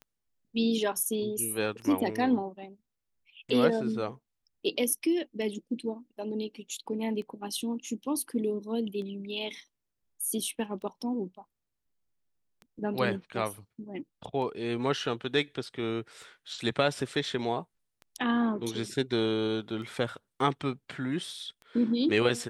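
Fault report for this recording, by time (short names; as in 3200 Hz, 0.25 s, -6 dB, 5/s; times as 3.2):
tick 33 1/3 rpm -32 dBFS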